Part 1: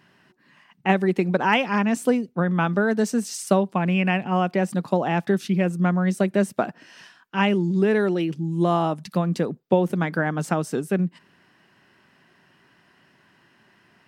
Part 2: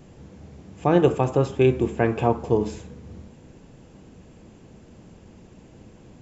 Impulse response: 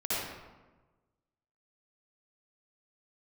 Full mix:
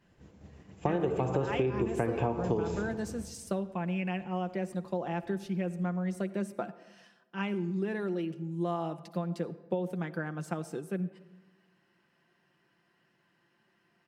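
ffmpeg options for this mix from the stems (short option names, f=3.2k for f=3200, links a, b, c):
-filter_complex "[0:a]equalizer=f=470:w=1.5:g=3,aecho=1:1:5.8:0.48,volume=-14.5dB,asplit=2[a][b];[b]volume=-23.5dB[c];[1:a]agate=range=-33dB:threshold=-35dB:ratio=3:detection=peak,acrossover=split=360|2200[d][e][f];[d]acompressor=threshold=-23dB:ratio=4[g];[e]acompressor=threshold=-22dB:ratio=4[h];[f]acompressor=threshold=-49dB:ratio=4[i];[g][h][i]amix=inputs=3:normalize=0,volume=0dB,asplit=2[j][k];[k]volume=-16.5dB[l];[2:a]atrim=start_sample=2205[m];[c][l]amix=inputs=2:normalize=0[n];[n][m]afir=irnorm=-1:irlink=0[o];[a][j][o]amix=inputs=3:normalize=0,acompressor=threshold=-26dB:ratio=6"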